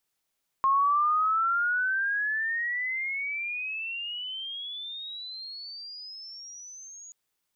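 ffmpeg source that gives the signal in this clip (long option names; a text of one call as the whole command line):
ffmpeg -f lavfi -i "aevalsrc='pow(10,(-19.5-23.5*t/6.48)/20)*sin(2*PI*1070*6.48/(32*log(2)/12)*(exp(32*log(2)/12*t/6.48)-1))':duration=6.48:sample_rate=44100" out.wav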